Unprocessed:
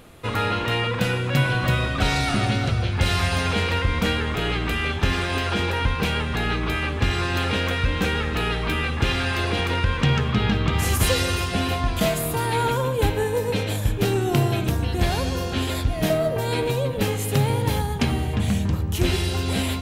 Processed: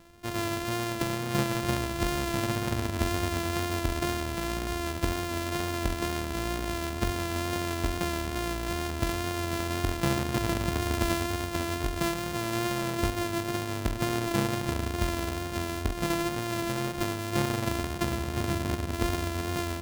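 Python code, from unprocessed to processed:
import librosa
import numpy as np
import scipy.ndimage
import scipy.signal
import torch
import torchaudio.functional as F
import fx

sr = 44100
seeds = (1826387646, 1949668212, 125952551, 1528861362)

y = np.r_[np.sort(x[:len(x) // 128 * 128].reshape(-1, 128), axis=1).ravel(), x[len(x) // 128 * 128:]]
y = fx.wow_flutter(y, sr, seeds[0], rate_hz=2.1, depth_cents=24.0)
y = F.gain(torch.from_numpy(y), -7.5).numpy()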